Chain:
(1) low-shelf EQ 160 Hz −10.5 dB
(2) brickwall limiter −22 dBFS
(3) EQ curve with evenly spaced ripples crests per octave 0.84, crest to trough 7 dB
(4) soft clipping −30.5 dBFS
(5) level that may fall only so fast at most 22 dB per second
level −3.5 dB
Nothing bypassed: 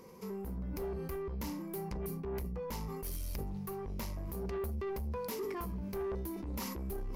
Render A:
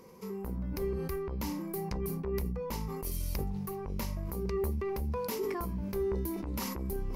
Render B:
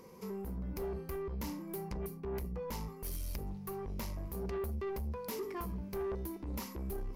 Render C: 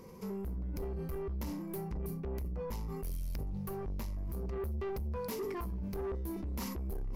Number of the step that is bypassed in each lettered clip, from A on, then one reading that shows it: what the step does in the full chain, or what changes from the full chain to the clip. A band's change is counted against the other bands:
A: 4, distortion level −12 dB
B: 5, change in crest factor −3.5 dB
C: 1, 125 Hz band +4.0 dB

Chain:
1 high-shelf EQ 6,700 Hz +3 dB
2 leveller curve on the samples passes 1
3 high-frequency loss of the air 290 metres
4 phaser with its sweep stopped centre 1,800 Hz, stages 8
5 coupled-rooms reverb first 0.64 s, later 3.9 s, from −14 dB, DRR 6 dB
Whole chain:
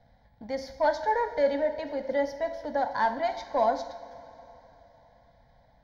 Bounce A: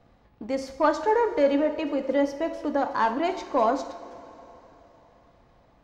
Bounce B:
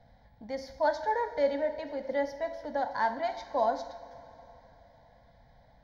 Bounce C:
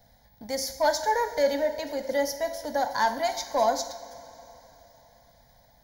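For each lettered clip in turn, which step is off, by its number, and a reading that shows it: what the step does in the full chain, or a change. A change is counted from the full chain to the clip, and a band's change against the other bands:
4, change in integrated loudness +3.5 LU
2, change in integrated loudness −3.0 LU
3, 4 kHz band +9.0 dB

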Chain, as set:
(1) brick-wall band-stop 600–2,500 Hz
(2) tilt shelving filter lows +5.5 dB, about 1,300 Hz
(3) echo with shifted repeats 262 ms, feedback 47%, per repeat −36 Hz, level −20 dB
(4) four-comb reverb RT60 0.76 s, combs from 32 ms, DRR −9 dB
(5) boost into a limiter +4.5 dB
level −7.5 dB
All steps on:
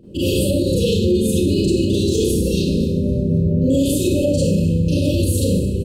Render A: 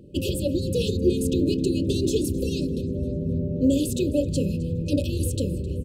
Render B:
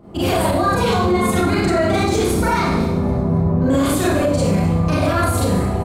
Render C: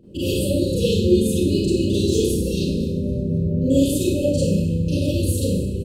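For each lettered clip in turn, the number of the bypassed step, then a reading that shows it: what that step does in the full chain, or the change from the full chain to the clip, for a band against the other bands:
4, change in momentary loudness spread +3 LU
1, 2 kHz band +13.5 dB
5, change in crest factor +7.0 dB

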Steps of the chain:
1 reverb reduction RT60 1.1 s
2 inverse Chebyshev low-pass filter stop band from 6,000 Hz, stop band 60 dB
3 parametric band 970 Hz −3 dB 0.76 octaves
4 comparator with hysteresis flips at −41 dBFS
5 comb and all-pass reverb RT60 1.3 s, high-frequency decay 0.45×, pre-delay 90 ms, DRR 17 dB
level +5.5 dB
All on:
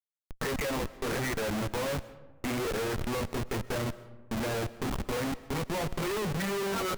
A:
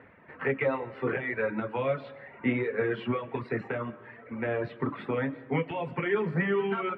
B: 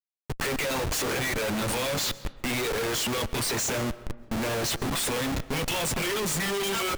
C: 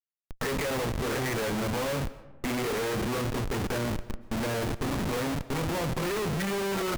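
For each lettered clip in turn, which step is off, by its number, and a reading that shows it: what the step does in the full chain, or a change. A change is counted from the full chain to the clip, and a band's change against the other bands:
4, change in crest factor +7.0 dB
2, 8 kHz band +8.5 dB
1, change in integrated loudness +2.5 LU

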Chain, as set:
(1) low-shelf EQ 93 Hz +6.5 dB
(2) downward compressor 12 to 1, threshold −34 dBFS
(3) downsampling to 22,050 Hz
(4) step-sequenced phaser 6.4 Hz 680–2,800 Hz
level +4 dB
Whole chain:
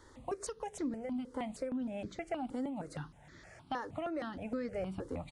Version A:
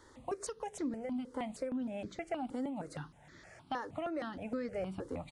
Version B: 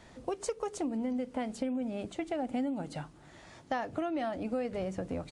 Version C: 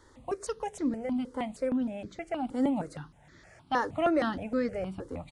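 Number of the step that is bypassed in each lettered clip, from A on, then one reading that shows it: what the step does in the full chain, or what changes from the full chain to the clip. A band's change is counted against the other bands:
1, 125 Hz band −2.0 dB
4, 125 Hz band −1.5 dB
2, average gain reduction 4.5 dB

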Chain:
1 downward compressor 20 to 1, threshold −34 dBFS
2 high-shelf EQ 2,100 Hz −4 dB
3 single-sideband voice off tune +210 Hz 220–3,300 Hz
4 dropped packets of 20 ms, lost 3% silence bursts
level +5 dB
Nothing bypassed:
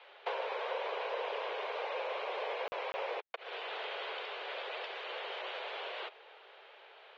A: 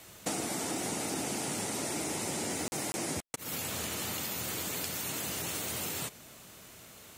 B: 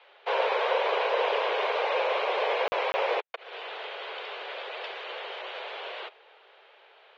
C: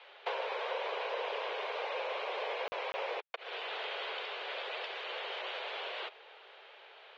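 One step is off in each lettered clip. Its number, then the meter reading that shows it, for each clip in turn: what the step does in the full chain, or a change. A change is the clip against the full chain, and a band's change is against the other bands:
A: 3, 250 Hz band +24.0 dB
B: 1, average gain reduction 6.0 dB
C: 2, 4 kHz band +2.5 dB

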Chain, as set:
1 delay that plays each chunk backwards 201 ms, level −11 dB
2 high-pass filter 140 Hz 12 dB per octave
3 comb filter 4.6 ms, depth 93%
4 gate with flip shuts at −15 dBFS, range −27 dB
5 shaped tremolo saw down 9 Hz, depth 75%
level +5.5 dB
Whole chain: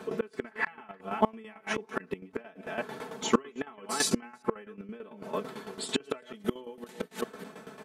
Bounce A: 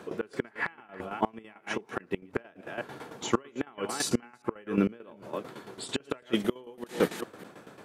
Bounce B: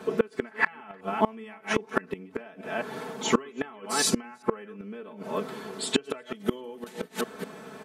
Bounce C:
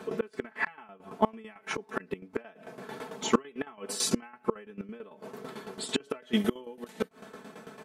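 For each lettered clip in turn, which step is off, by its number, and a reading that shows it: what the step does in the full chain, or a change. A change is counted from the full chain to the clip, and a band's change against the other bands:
3, change in crest factor −2.0 dB
5, change in momentary loudness spread −2 LU
1, 250 Hz band +1.5 dB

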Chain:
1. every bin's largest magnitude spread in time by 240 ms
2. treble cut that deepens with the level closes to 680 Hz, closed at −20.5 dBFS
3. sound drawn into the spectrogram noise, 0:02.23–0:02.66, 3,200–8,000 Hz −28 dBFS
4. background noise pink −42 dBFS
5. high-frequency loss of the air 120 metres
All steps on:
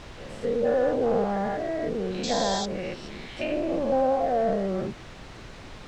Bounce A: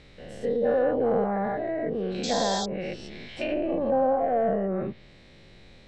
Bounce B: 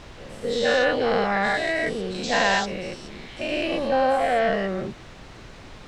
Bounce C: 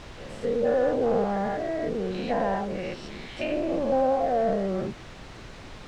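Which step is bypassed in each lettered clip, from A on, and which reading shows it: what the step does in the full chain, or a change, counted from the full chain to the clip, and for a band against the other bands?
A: 4, change in momentary loudness spread −8 LU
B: 2, 2 kHz band +12.5 dB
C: 3, 4 kHz band −7.0 dB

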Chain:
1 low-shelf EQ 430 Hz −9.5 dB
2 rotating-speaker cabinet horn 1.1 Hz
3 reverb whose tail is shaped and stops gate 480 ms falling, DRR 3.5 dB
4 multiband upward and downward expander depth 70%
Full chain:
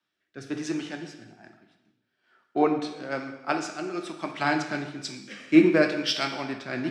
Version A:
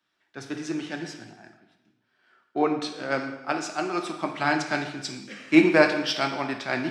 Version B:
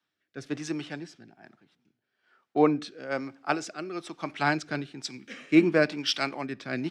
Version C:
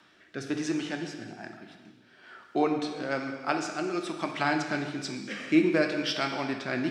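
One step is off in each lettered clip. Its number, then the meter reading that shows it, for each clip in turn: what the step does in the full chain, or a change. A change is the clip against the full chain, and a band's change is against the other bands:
2, 2 kHz band +3.0 dB
3, 125 Hz band +2.0 dB
4, 250 Hz band −2.0 dB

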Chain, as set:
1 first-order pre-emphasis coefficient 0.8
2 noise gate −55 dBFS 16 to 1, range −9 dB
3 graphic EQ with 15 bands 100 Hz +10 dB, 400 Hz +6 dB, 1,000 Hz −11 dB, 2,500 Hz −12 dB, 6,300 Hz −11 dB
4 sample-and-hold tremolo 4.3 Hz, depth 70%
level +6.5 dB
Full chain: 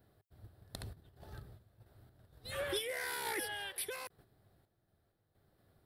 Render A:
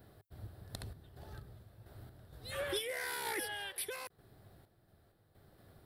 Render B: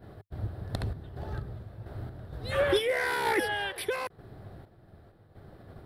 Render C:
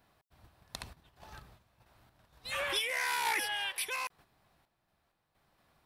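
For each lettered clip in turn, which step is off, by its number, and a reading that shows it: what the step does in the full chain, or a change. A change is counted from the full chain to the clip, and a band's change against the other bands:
2, change in momentary loudness spread +2 LU
1, 8 kHz band −14.5 dB
3, change in momentary loudness spread +1 LU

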